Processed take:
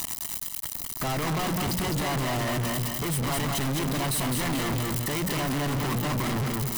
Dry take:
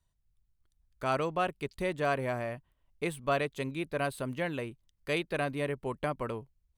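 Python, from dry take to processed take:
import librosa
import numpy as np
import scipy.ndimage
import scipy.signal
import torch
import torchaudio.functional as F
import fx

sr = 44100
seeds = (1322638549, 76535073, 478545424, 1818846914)

y = x + 0.5 * 10.0 ** (-33.0 / 20.0) * np.diff(np.sign(x), prepend=np.sign(x[:1]))
y = fx.highpass(y, sr, hz=140.0, slope=6)
y = fx.rider(y, sr, range_db=5, speed_s=0.5)
y = np.clip(10.0 ** (35.5 / 20.0) * y, -1.0, 1.0) / 10.0 ** (35.5 / 20.0)
y = fx.low_shelf(y, sr, hz=430.0, db=8.5)
y = fx.hum_notches(y, sr, base_hz=60, count=4)
y = fx.leveller(y, sr, passes=5)
y = y + 0.84 * np.pad(y, (int(1.0 * sr / 1000.0), 0))[:len(y)]
y = fx.echo_feedback(y, sr, ms=207, feedback_pct=28, wet_db=-6.0)
y = fx.leveller(y, sr, passes=5)
y = F.gain(torch.from_numpy(y), -7.0).numpy()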